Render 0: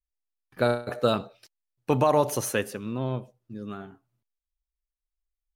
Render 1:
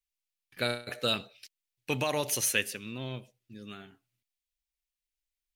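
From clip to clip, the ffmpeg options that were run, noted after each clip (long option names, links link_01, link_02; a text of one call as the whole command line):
ffmpeg -i in.wav -af "highshelf=frequency=1600:width_type=q:width=1.5:gain=12,volume=-8.5dB" out.wav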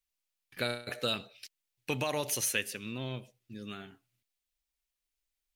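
ffmpeg -i in.wav -af "acompressor=threshold=-40dB:ratio=1.5,volume=2.5dB" out.wav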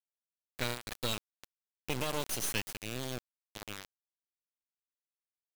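ffmpeg -i in.wav -af "acrusher=bits=3:dc=4:mix=0:aa=0.000001" out.wav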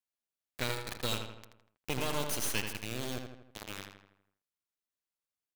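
ffmpeg -i in.wav -filter_complex "[0:a]asplit=2[link_01][link_02];[link_02]adelay=81,lowpass=frequency=3600:poles=1,volume=-5.5dB,asplit=2[link_03][link_04];[link_04]adelay=81,lowpass=frequency=3600:poles=1,volume=0.52,asplit=2[link_05][link_06];[link_06]adelay=81,lowpass=frequency=3600:poles=1,volume=0.52,asplit=2[link_07][link_08];[link_08]adelay=81,lowpass=frequency=3600:poles=1,volume=0.52,asplit=2[link_09][link_10];[link_10]adelay=81,lowpass=frequency=3600:poles=1,volume=0.52,asplit=2[link_11][link_12];[link_12]adelay=81,lowpass=frequency=3600:poles=1,volume=0.52,asplit=2[link_13][link_14];[link_14]adelay=81,lowpass=frequency=3600:poles=1,volume=0.52[link_15];[link_01][link_03][link_05][link_07][link_09][link_11][link_13][link_15]amix=inputs=8:normalize=0" out.wav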